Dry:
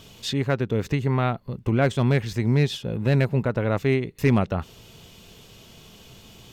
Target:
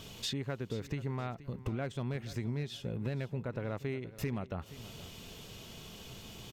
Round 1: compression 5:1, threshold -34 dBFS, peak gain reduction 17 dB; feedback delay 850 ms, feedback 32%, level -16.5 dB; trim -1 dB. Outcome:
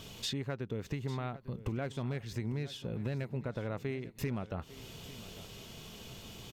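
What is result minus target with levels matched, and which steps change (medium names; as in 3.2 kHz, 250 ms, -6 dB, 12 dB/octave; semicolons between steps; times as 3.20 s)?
echo 374 ms late
change: feedback delay 476 ms, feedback 32%, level -16.5 dB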